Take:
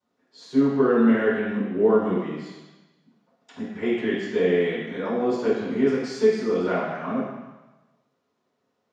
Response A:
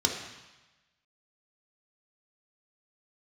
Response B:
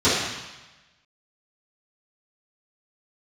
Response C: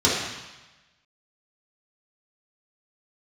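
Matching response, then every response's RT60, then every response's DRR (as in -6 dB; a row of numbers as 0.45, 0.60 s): B; 1.1, 1.1, 1.1 s; 0.0, -16.0, -8.5 dB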